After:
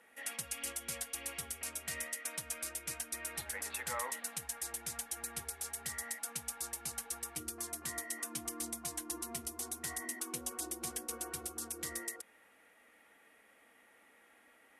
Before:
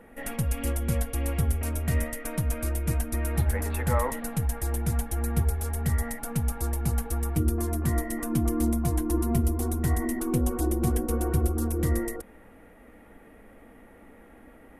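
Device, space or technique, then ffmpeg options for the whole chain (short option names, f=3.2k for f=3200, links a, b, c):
piezo pickup straight into a mixer: -af "lowpass=6.2k,aderivative,volume=6.5dB"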